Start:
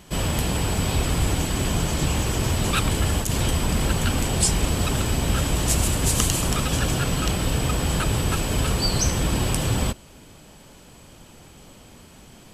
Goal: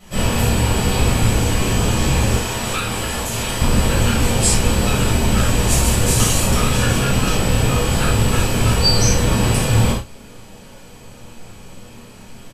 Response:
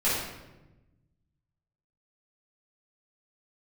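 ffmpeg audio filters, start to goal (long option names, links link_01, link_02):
-filter_complex "[0:a]asplit=2[link_01][link_02];[link_02]adelay=35,volume=-9dB[link_03];[link_01][link_03]amix=inputs=2:normalize=0[link_04];[1:a]atrim=start_sample=2205,atrim=end_sample=4410[link_05];[link_04][link_05]afir=irnorm=-1:irlink=0,asettb=1/sr,asplit=3[link_06][link_07][link_08];[link_06]atrim=end=2.394[link_09];[link_07]atrim=start=2.39:end=3.62,asetpts=PTS-STARTPTS,afade=type=in:duration=0.004:curve=qsin,afade=type=out:start_time=1.226:duration=0.004:curve=qsin,acrossover=split=200|510[link_10][link_11][link_12];[link_10]acompressor=threshold=-22dB:ratio=4[link_13];[link_11]acompressor=threshold=-27dB:ratio=4[link_14];[link_12]acompressor=threshold=-16dB:ratio=4[link_15];[link_13][link_14][link_15]amix=inputs=3:normalize=0[link_16];[link_08]atrim=start=3.616[link_17];[link_09][link_16]acrossfade=duration=0.004:curve1=hsin:curve2=qsin[link_18];[link_18][link_17]acrossfade=duration=0.004:curve1=qsin:curve2=hsin,volume=-5dB"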